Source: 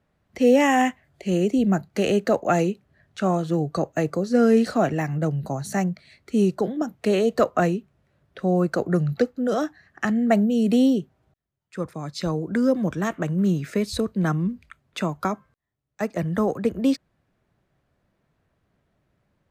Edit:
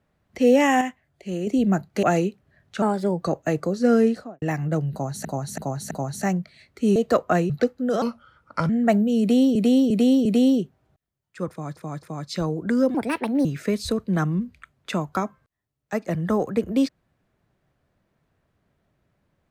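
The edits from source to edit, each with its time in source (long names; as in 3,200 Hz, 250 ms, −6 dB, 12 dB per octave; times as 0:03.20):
0:00.81–0:01.47: clip gain −6.5 dB
0:02.03–0:02.46: remove
0:03.25–0:03.72: play speed 118%
0:04.42–0:04.92: fade out and dull
0:05.42–0:05.75: repeat, 4 plays
0:06.47–0:07.23: remove
0:07.77–0:09.08: remove
0:09.60–0:10.12: play speed 77%
0:10.63–0:10.98: repeat, 4 plays
0:11.88–0:12.14: repeat, 3 plays
0:12.80–0:13.53: play speed 144%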